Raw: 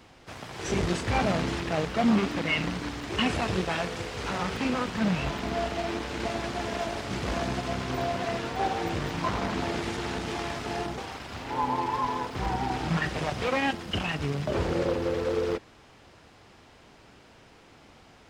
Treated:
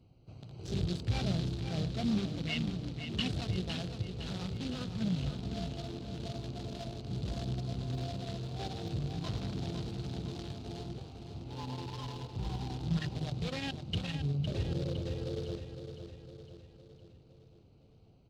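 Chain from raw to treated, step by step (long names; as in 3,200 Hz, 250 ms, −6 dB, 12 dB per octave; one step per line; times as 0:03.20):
adaptive Wiener filter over 25 samples
octave-band graphic EQ 125/250/500/1,000/2,000/4,000 Hz +8/−4/−4/−12/−7/+10 dB
on a send: repeating echo 509 ms, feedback 52%, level −8.5 dB
on the sum: level −6 dB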